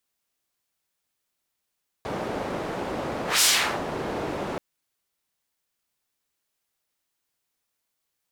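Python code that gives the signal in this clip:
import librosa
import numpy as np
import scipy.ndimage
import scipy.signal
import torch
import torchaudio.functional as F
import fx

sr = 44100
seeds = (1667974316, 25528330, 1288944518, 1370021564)

y = fx.whoosh(sr, seeds[0], length_s=2.53, peak_s=1.37, rise_s=0.17, fall_s=0.42, ends_hz=500.0, peak_hz=6600.0, q=0.86, swell_db=12.5)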